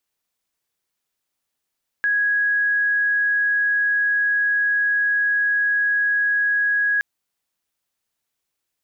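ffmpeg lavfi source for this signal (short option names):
-f lavfi -i "aevalsrc='0.15*sin(2*PI*1660*t)':d=4.97:s=44100"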